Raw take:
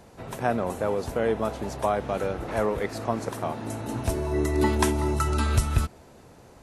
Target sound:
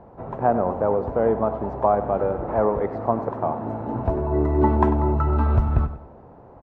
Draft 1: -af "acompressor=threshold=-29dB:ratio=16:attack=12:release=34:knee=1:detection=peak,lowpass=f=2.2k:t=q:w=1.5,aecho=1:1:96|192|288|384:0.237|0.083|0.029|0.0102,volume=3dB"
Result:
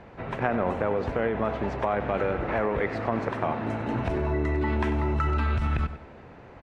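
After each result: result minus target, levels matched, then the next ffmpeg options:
compressor: peak gain reduction +14 dB; 2000 Hz band +12.5 dB
-af "lowpass=f=2.2k:t=q:w=1.5,aecho=1:1:96|192|288|384:0.237|0.083|0.029|0.0102,volume=3dB"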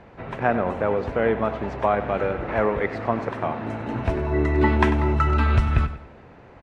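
2000 Hz band +12.5 dB
-af "lowpass=f=920:t=q:w=1.5,aecho=1:1:96|192|288|384:0.237|0.083|0.029|0.0102,volume=3dB"

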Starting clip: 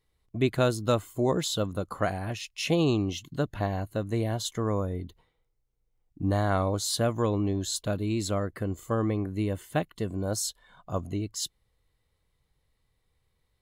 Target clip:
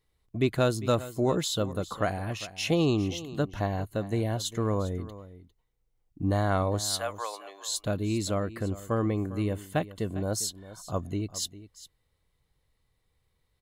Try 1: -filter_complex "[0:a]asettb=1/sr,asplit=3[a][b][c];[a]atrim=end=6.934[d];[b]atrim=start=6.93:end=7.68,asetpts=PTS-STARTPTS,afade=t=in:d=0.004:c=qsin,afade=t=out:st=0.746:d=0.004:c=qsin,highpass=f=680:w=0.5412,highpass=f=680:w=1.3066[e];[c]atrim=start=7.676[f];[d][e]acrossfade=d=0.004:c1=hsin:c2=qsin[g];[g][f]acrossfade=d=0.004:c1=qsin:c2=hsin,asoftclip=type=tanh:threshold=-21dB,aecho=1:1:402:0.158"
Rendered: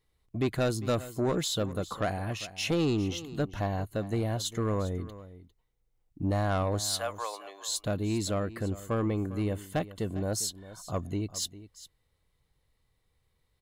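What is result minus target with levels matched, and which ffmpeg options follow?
soft clip: distortion +18 dB
-filter_complex "[0:a]asettb=1/sr,asplit=3[a][b][c];[a]atrim=end=6.934[d];[b]atrim=start=6.93:end=7.68,asetpts=PTS-STARTPTS,afade=t=in:d=0.004:c=qsin,afade=t=out:st=0.746:d=0.004:c=qsin,highpass=f=680:w=0.5412,highpass=f=680:w=1.3066[e];[c]atrim=start=7.676[f];[d][e]acrossfade=d=0.004:c1=hsin:c2=qsin[g];[g][f]acrossfade=d=0.004:c1=qsin:c2=hsin,asoftclip=type=tanh:threshold=-9dB,aecho=1:1:402:0.158"

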